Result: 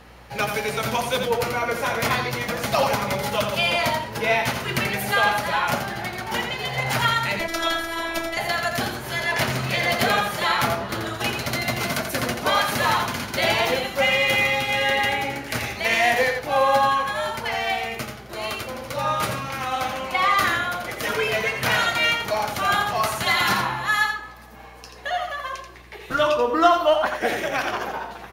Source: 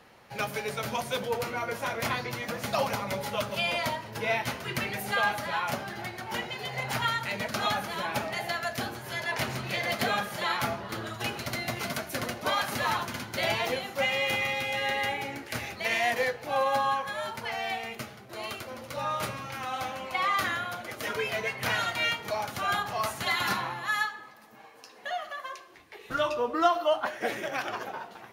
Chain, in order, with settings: in parallel at -7 dB: one-sided clip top -22.5 dBFS; 7.39–8.37 s: on the sum: robot voice 332 Hz; hum 60 Hz, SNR 28 dB; delay 85 ms -6.5 dB; trim +4 dB

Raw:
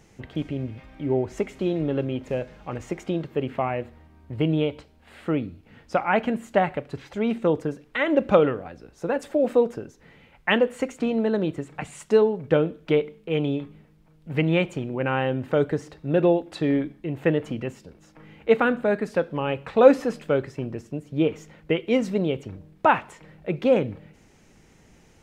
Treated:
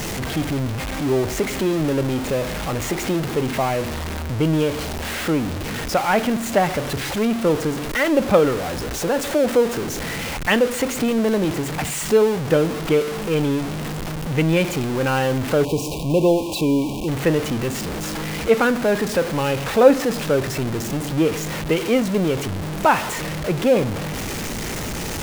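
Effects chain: jump at every zero crossing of -22.5 dBFS; spectral selection erased 15.64–17.08 s, 1.1–2.3 kHz; trim +1 dB

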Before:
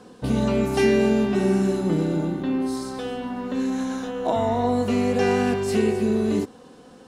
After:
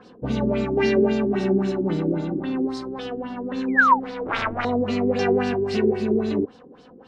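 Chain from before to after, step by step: 3.87–4.65 s: self-modulated delay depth 0.98 ms; 3.68–4.00 s: painted sound fall 750–2500 Hz -15 dBFS; LFO low-pass sine 3.7 Hz 340–5200 Hz; trim -2.5 dB

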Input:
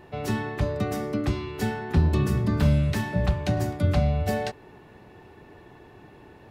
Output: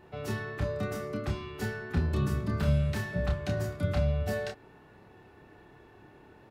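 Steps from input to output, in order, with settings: peaking EQ 1.4 kHz +5 dB 0.33 oct; doubling 29 ms -4 dB; trim -7.5 dB

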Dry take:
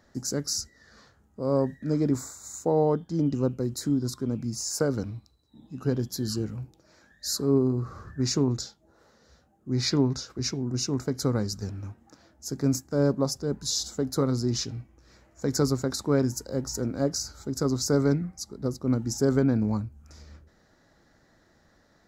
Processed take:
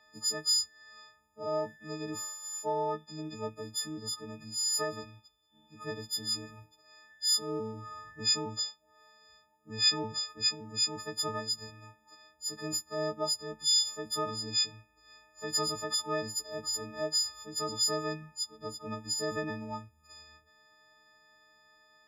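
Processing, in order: partials quantised in pitch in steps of 6 st; three-band isolator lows -13 dB, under 570 Hz, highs -13 dB, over 4.9 kHz; trim -4 dB

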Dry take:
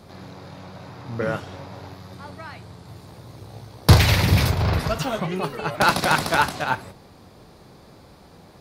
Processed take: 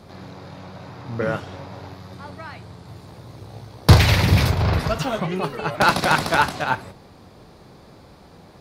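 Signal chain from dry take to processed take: treble shelf 7.5 kHz -5.5 dB; trim +1.5 dB

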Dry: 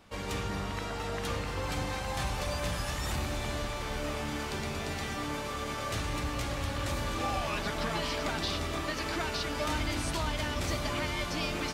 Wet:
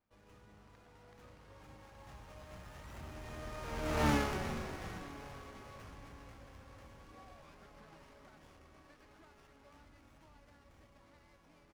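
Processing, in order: Doppler pass-by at 4.09 s, 16 m/s, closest 1.4 m; frequency-shifting echo 403 ms, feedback 50%, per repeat -52 Hz, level -12 dB; sliding maximum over 9 samples; trim +7 dB

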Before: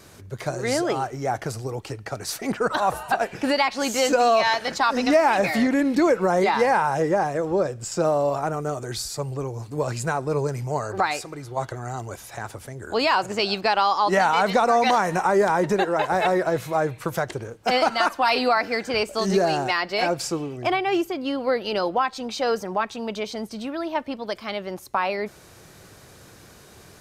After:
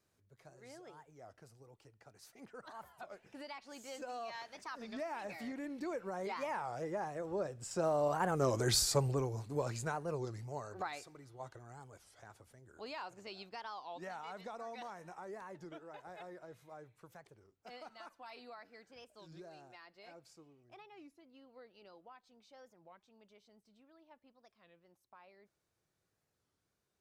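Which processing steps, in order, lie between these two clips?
Doppler pass-by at 8.78 s, 9 m/s, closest 2.2 m; warped record 33 1/3 rpm, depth 250 cents

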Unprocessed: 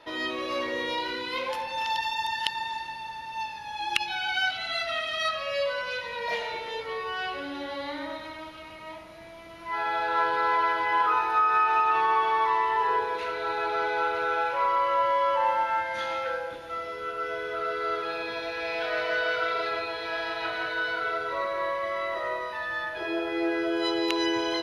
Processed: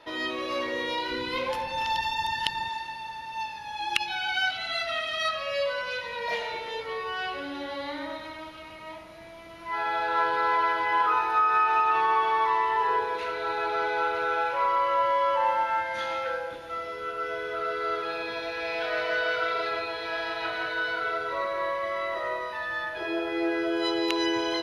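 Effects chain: 1.11–2.69 s: bass shelf 260 Hz +11 dB

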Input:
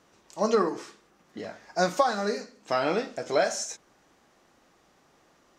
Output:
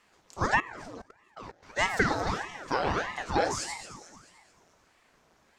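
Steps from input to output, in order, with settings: echo whose repeats swap between lows and highs 110 ms, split 1 kHz, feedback 68%, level -8 dB; 0.60–1.63 s: level held to a coarse grid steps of 20 dB; ring modulator with a swept carrier 800 Hz, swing 90%, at 1.6 Hz

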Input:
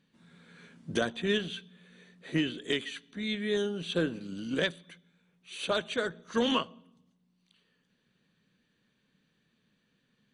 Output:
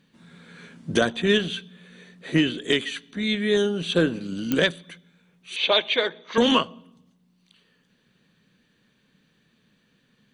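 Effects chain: 5.56–6.38 s: cabinet simulation 370–4800 Hz, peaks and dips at 900 Hz +5 dB, 1.4 kHz -8 dB, 2.2 kHz +10 dB, 3.5 kHz +7 dB; clicks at 4.52 s, -18 dBFS; trim +8.5 dB

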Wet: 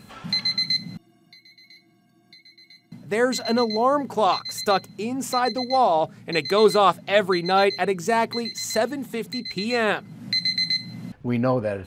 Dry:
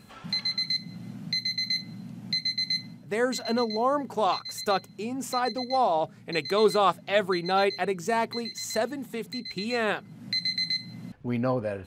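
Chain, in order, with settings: 0.97–2.92 s: inharmonic resonator 330 Hz, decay 0.26 s, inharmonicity 0.03; trim +5 dB

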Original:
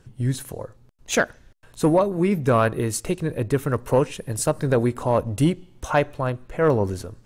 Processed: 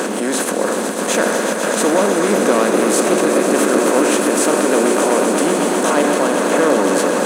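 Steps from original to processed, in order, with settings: spectral levelling over time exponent 0.4; peaking EQ 8.4 kHz +3 dB 0.38 oct; waveshaping leveller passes 1; in parallel at -1 dB: compressor with a negative ratio -17 dBFS; on the sum: peak limiter -7 dBFS, peak gain reduction 9.5 dB; elliptic high-pass 210 Hz, stop band 50 dB; on a send: echo with a slow build-up 125 ms, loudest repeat 5, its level -10 dB; on the sum: trim -1 dB

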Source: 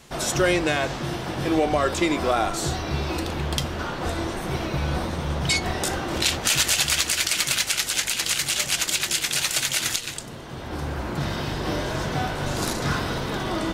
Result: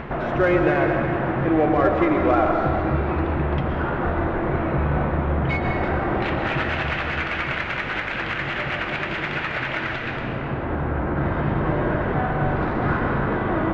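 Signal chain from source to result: low-pass 2 kHz 24 dB/octave; upward compressor, threshold -24 dBFS; in parallel at -7 dB: saturation -23.5 dBFS, distortion -11 dB; on the sum: reverberation RT60 2.4 s, pre-delay 80 ms, DRR 2 dB

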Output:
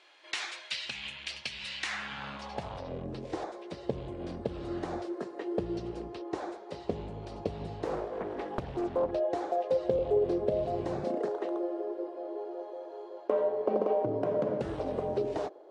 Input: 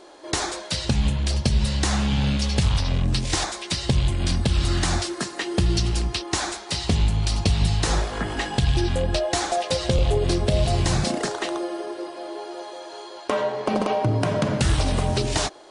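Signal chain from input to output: band-pass sweep 2.5 kHz -> 470 Hz, 1.79–2.91 s; 7.85–9.11 s: loudspeaker Doppler distortion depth 0.85 ms

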